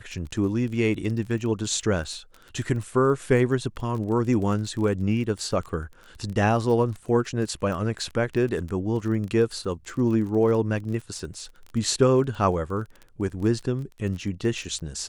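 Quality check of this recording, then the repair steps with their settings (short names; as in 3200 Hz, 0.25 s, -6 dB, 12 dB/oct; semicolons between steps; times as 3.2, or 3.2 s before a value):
crackle 23/s -32 dBFS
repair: de-click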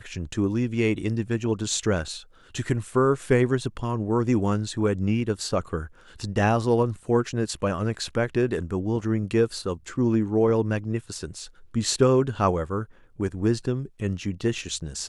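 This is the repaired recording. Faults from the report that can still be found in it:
none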